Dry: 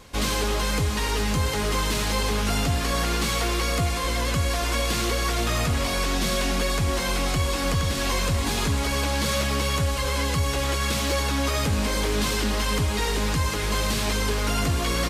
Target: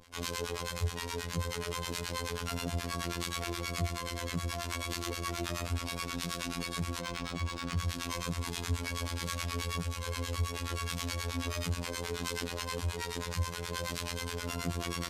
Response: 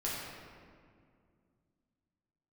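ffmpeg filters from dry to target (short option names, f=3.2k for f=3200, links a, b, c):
-filter_complex "[0:a]asettb=1/sr,asplit=3[a][b][c];[a]atrim=end=7.004[d];[b]atrim=start=7:end=7.77,asetpts=PTS-STARTPTS,afade=t=in:d=0.004:c=qsin,afade=t=out:st=0.766:d=0.004:c=qsin,adynamicsmooth=sensitivity=5:basefreq=4.2k[e];[c]atrim=start=7.766[f];[d][e]acrossfade=d=0.004:c1=hsin:c2=qsin[g];[g][f]acrossfade=d=0.004:c1=qsin:c2=hsin,acrossover=split=810[h][i];[h]aeval=exprs='val(0)*(1-1/2+1/2*cos(2*PI*9.4*n/s))':c=same[j];[i]aeval=exprs='val(0)*(1-1/2-1/2*cos(2*PI*9.4*n/s))':c=same[k];[j][k]amix=inputs=2:normalize=0,afftfilt=real='hypot(re,im)*cos(PI*b)':imag='0':win_size=2048:overlap=0.75,volume=-3.5dB"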